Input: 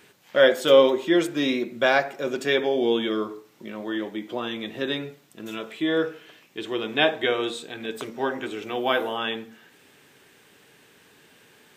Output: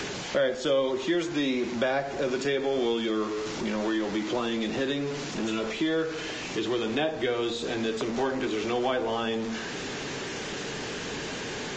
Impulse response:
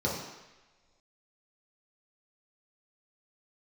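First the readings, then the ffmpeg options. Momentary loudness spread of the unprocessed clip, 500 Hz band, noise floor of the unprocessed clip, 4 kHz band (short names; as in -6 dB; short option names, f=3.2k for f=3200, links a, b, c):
16 LU, -4.5 dB, -56 dBFS, -3.5 dB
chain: -filter_complex "[0:a]aeval=exprs='val(0)+0.5*0.0282*sgn(val(0))':c=same,acrossover=split=170|760[a][b][c];[a]acompressor=threshold=-48dB:ratio=4[d];[b]acompressor=threshold=-33dB:ratio=4[e];[c]acompressor=threshold=-40dB:ratio=4[f];[d][e][f]amix=inputs=3:normalize=0,volume=5dB" -ar 16000 -c:a libvorbis -b:a 32k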